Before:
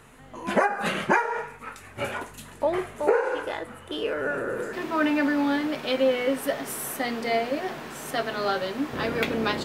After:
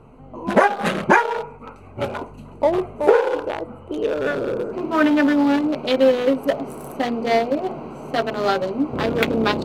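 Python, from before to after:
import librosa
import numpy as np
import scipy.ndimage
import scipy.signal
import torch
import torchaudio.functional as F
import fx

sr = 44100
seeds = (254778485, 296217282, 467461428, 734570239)

y = fx.wiener(x, sr, points=25)
y = y * librosa.db_to_amplitude(7.5)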